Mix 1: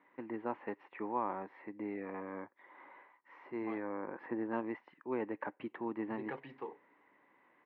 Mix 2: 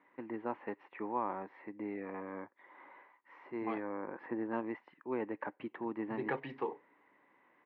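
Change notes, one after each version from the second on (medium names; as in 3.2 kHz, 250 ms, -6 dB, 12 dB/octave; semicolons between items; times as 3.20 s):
second voice +7.0 dB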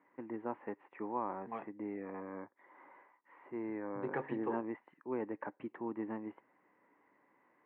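second voice: entry -2.15 s; master: add distance through air 500 m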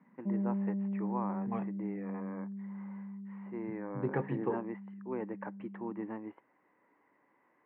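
second voice: remove high-pass 610 Hz 6 dB/octave; background: unmuted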